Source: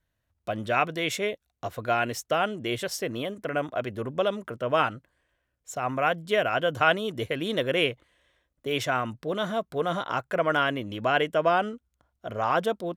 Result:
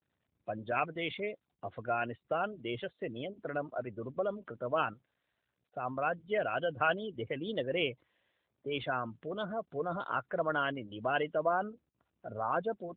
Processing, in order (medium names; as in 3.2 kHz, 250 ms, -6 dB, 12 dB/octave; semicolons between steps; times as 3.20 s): 11.62–12.39 s: bass shelf 62 Hz +8 dB; spectral gate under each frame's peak -20 dB strong; 4.93–5.72 s: feedback comb 710 Hz, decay 0.16 s, harmonics all, mix 60%; 9.64–10.28 s: peaking EQ 1.4 kHz -5 dB -> +7 dB 0.68 oct; trim -7 dB; AMR-NB 12.2 kbps 8 kHz